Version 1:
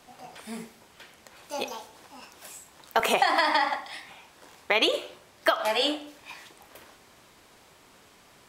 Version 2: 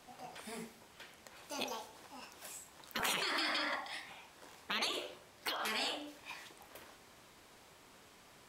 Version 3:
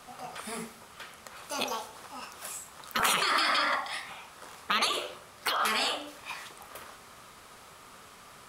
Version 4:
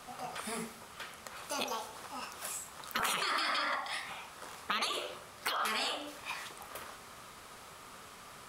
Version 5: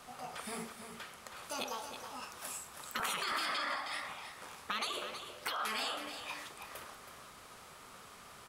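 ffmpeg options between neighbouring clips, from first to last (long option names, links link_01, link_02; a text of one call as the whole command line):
ffmpeg -i in.wav -af "afftfilt=real='re*lt(hypot(re,im),0.141)':imag='im*lt(hypot(re,im),0.141)':win_size=1024:overlap=0.75,volume=-4.5dB" out.wav
ffmpeg -i in.wav -af "equalizer=frequency=315:width_type=o:width=0.33:gain=-7,equalizer=frequency=1250:width_type=o:width=0.33:gain=9,equalizer=frequency=10000:width_type=o:width=0.33:gain=5,volume=7.5dB" out.wav
ffmpeg -i in.wav -af "acompressor=threshold=-35dB:ratio=2" out.wav
ffmpeg -i in.wav -filter_complex "[0:a]asoftclip=type=tanh:threshold=-18dB,asplit=2[link_01][link_02];[link_02]aecho=0:1:322:0.355[link_03];[link_01][link_03]amix=inputs=2:normalize=0,volume=-3dB" out.wav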